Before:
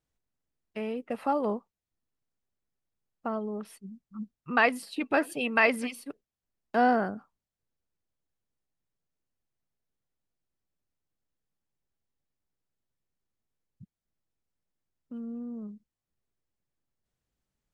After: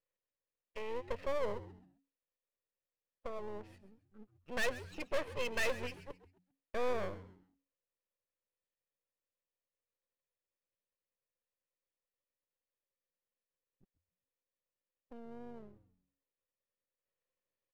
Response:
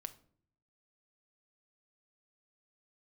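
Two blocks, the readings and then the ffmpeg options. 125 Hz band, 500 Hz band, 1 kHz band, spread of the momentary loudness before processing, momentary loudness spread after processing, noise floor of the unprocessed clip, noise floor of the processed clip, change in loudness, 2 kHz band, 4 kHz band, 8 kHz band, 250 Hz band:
-4.5 dB, -7.5 dB, -15.5 dB, 20 LU, 18 LU, under -85 dBFS, under -85 dBFS, -11.0 dB, -12.0 dB, -5.0 dB, -4.0 dB, -17.5 dB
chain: -filter_complex "[0:a]asplit=3[a][b][c];[a]bandpass=f=530:t=q:w=8,volume=0dB[d];[b]bandpass=f=1.84k:t=q:w=8,volume=-6dB[e];[c]bandpass=f=2.48k:t=q:w=8,volume=-9dB[f];[d][e][f]amix=inputs=3:normalize=0,aeval=exprs='(tanh(31.6*val(0)+0.75)-tanh(0.75))/31.6':c=same,aeval=exprs='max(val(0),0)':c=same,asplit=2[g][h];[h]asplit=3[i][j][k];[i]adelay=133,afreqshift=-92,volume=-15.5dB[l];[j]adelay=266,afreqshift=-184,volume=-26dB[m];[k]adelay=399,afreqshift=-276,volume=-36.4dB[n];[l][m][n]amix=inputs=3:normalize=0[o];[g][o]amix=inputs=2:normalize=0,volume=14dB"

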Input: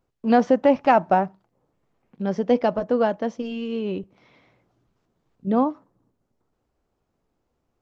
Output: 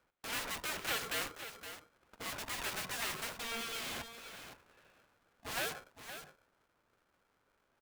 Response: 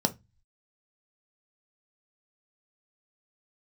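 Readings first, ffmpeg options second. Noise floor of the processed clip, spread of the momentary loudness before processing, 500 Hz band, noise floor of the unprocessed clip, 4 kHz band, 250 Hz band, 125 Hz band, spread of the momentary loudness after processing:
-78 dBFS, 12 LU, -26.0 dB, -76 dBFS, +3.0 dB, -29.0 dB, -18.5 dB, 13 LU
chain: -filter_complex "[0:a]highpass=390,equalizer=f=990:w=2.4:g=8.5,acontrast=75,aresample=8000,asoftclip=type=hard:threshold=-16dB,aresample=44100,asplit=2[a][b];[b]highpass=f=720:p=1,volume=7dB,asoftclip=type=tanh:threshold=-13dB[c];[a][c]amix=inputs=2:normalize=0,lowpass=f=2.2k:p=1,volume=-6dB,acrossover=split=1300[d][e];[d]aeval=exprs='(mod(33.5*val(0)+1,2)-1)/33.5':c=same[f];[f][e]amix=inputs=2:normalize=0,aecho=1:1:517:0.299,aeval=exprs='val(0)*sgn(sin(2*PI*460*n/s))':c=same,volume=-7.5dB"

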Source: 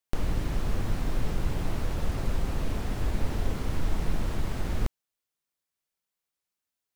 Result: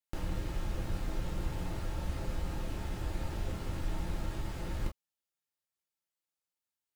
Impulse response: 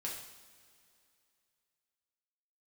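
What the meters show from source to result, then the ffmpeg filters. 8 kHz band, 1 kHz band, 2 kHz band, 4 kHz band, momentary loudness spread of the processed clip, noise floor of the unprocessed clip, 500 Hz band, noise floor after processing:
-5.5 dB, -5.5 dB, -6.0 dB, -5.5 dB, 2 LU, under -85 dBFS, -6.5 dB, under -85 dBFS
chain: -filter_complex "[1:a]atrim=start_sample=2205,afade=t=out:st=0.14:d=0.01,atrim=end_sample=6615,asetrate=79380,aresample=44100[a];[0:a][a]afir=irnorm=-1:irlink=0"

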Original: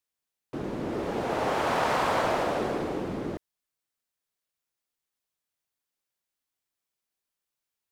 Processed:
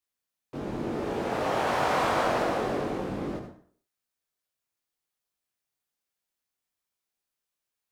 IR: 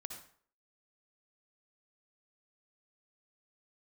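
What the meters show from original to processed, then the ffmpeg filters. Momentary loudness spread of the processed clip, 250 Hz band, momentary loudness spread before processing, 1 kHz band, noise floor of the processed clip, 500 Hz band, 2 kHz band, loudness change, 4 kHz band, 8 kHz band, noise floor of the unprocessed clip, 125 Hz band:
13 LU, 0.0 dB, 12 LU, 0.0 dB, under -85 dBFS, 0.0 dB, 0.0 dB, 0.0 dB, 0.0 dB, 0.0 dB, under -85 dBFS, +0.5 dB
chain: -filter_complex "[0:a]asplit=2[a][b];[1:a]atrim=start_sample=2205,adelay=21[c];[b][c]afir=irnorm=-1:irlink=0,volume=5dB[d];[a][d]amix=inputs=2:normalize=0,volume=-4dB"

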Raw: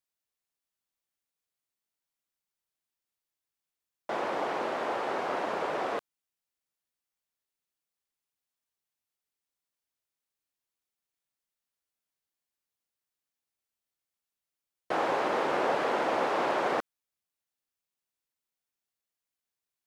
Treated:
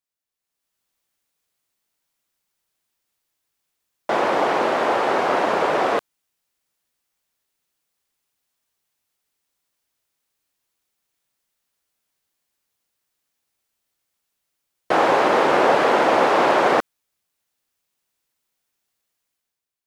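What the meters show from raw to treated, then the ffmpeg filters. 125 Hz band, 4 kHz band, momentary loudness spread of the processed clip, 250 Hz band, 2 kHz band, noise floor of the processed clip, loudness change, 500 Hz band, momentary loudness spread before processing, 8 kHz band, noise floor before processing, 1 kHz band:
+11.5 dB, +11.5 dB, 6 LU, +11.5 dB, +11.5 dB, -82 dBFS, +11.5 dB, +11.5 dB, 6 LU, +11.5 dB, under -85 dBFS, +11.5 dB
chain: -af "dynaudnorm=f=130:g=9:m=12dB"

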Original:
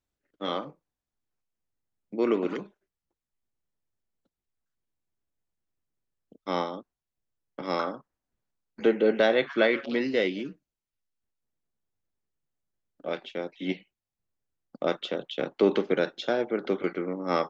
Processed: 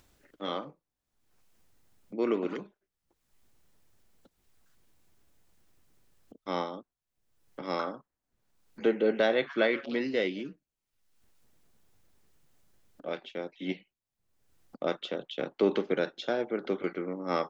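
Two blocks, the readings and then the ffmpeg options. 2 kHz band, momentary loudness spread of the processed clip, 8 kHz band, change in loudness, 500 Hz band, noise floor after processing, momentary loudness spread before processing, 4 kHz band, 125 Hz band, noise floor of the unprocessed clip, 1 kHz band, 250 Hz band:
-3.5 dB, 15 LU, n/a, -3.5 dB, -3.5 dB, under -85 dBFS, 15 LU, -3.5 dB, -3.5 dB, under -85 dBFS, -3.5 dB, -3.5 dB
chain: -af "acompressor=mode=upward:threshold=-42dB:ratio=2.5,volume=-3.5dB"

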